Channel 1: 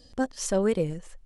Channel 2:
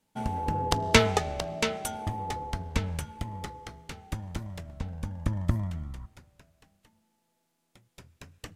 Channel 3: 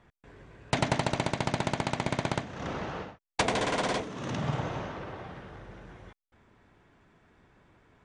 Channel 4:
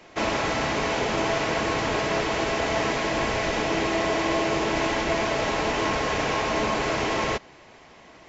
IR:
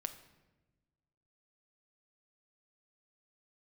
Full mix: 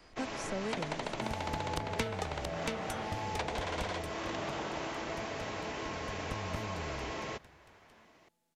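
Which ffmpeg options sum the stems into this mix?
-filter_complex "[0:a]volume=0.398[s0];[1:a]adelay=1050,volume=1.78,afade=t=out:st=3.66:d=0.48:silence=0.223872,afade=t=in:st=5.89:d=0.58:silence=0.375837,asplit=2[s1][s2];[s2]volume=0.562[s3];[2:a]highpass=470,lowpass=4400,volume=1.19[s4];[3:a]highpass=62,volume=0.224[s5];[4:a]atrim=start_sample=2205[s6];[s3][s6]afir=irnorm=-1:irlink=0[s7];[s0][s1][s4][s5][s7]amix=inputs=5:normalize=0,acrossover=split=280|640|3100|6900[s8][s9][s10][s11][s12];[s8]acompressor=threshold=0.0112:ratio=4[s13];[s9]acompressor=threshold=0.00708:ratio=4[s14];[s10]acompressor=threshold=0.01:ratio=4[s15];[s11]acompressor=threshold=0.00398:ratio=4[s16];[s12]acompressor=threshold=0.002:ratio=4[s17];[s13][s14][s15][s16][s17]amix=inputs=5:normalize=0"

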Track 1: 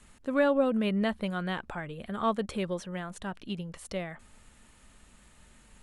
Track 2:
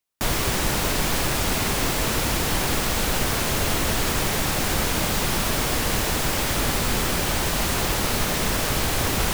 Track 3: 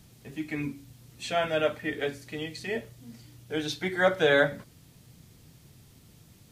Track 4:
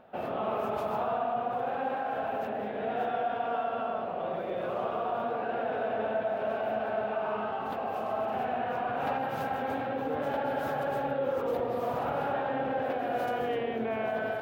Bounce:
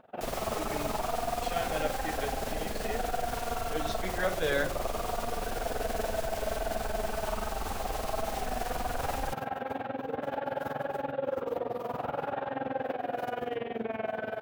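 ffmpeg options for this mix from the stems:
-filter_complex "[1:a]asubboost=boost=4.5:cutoff=66,alimiter=limit=0.2:level=0:latency=1:release=24,volume=0.188[s0];[2:a]adelay=200,volume=0.422[s1];[3:a]tremolo=f=21:d=0.857,volume=1.06[s2];[s0][s1][s2]amix=inputs=3:normalize=0"

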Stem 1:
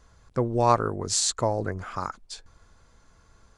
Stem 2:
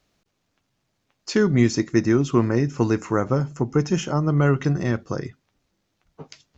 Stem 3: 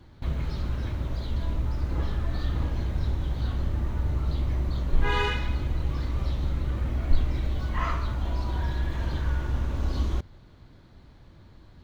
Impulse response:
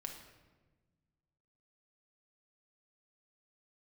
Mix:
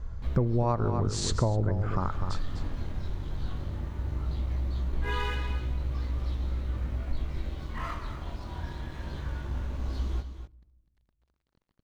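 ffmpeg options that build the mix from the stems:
-filter_complex "[0:a]aemphasis=mode=reproduction:type=riaa,volume=1.33,asplit=3[s0][s1][s2];[s1]volume=0.355[s3];[s2]volume=0.335[s4];[2:a]flanger=delay=16:depth=6.9:speed=0.18,aeval=exprs='sgn(val(0))*max(abs(val(0))-0.00447,0)':c=same,volume=0.668,asplit=3[s5][s6][s7];[s6]volume=0.224[s8];[s7]volume=0.316[s9];[3:a]atrim=start_sample=2205[s10];[s3][s8]amix=inputs=2:normalize=0[s11];[s11][s10]afir=irnorm=-1:irlink=0[s12];[s4][s9]amix=inputs=2:normalize=0,aecho=0:1:250:1[s13];[s0][s5][s12][s13]amix=inputs=4:normalize=0,acompressor=threshold=0.0708:ratio=6"

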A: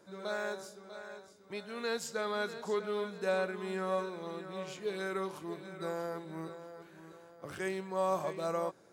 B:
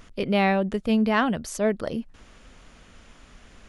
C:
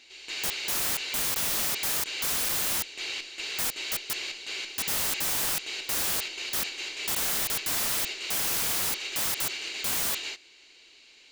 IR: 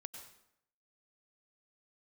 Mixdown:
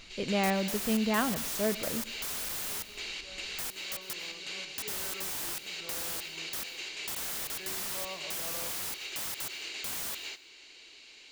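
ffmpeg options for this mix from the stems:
-filter_complex "[0:a]volume=0.251,afade=t=in:st=3.89:d=0.24:silence=0.266073[s0];[1:a]volume=0.335,asplit=2[s1][s2];[s2]volume=0.562[s3];[2:a]acompressor=threshold=0.00794:ratio=2.5,volume=1,asplit=2[s4][s5];[s5]volume=0.473[s6];[3:a]atrim=start_sample=2205[s7];[s3][s6]amix=inputs=2:normalize=0[s8];[s8][s7]afir=irnorm=-1:irlink=0[s9];[s0][s1][s4][s9]amix=inputs=4:normalize=0"

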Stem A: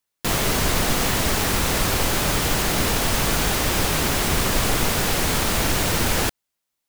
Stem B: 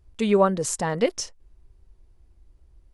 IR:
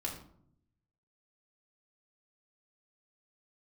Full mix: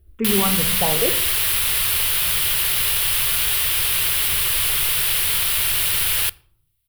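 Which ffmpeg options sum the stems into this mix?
-filter_complex "[0:a]firequalizer=gain_entry='entry(150,0);entry(220,-25);entry(370,-3);entry(680,-5);entry(1100,3);entry(3000,14);entry(6600,-2);entry(10000,13)':delay=0.05:min_phase=1,highshelf=f=4200:g=6.5,volume=0.282,asplit=2[s0][s1];[s1]volume=0.119[s2];[1:a]lowpass=1600,alimiter=limit=0.15:level=0:latency=1,asplit=2[s3][s4];[s4]afreqshift=-0.87[s5];[s3][s5]amix=inputs=2:normalize=1,volume=1.26,asplit=2[s6][s7];[s7]volume=0.531[s8];[2:a]atrim=start_sample=2205[s9];[s2][s8]amix=inputs=2:normalize=0[s10];[s10][s9]afir=irnorm=-1:irlink=0[s11];[s0][s6][s11]amix=inputs=3:normalize=0"

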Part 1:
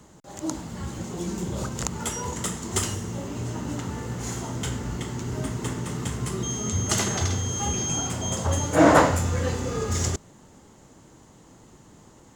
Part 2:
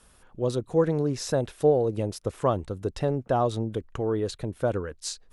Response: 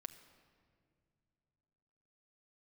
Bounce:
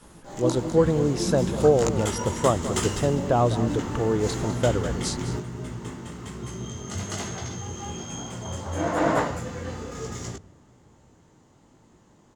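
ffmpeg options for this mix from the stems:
-filter_complex "[0:a]equalizer=f=13000:t=o:w=1.6:g=-7.5,bandreject=f=50:t=h:w=6,bandreject=f=100:t=h:w=6,flanger=delay=16.5:depth=5.1:speed=1.1,volume=1.41,asplit=3[s0][s1][s2];[s1]volume=0.447[s3];[s2]volume=0.447[s4];[1:a]volume=1.33,asplit=3[s5][s6][s7];[s6]volume=0.211[s8];[s7]apad=whole_len=544908[s9];[s0][s9]sidechaingate=range=0.0224:threshold=0.00126:ratio=16:detection=peak[s10];[2:a]atrim=start_sample=2205[s11];[s3][s11]afir=irnorm=-1:irlink=0[s12];[s4][s8]amix=inputs=2:normalize=0,aecho=0:1:203:1[s13];[s10][s5][s12][s13]amix=inputs=4:normalize=0"

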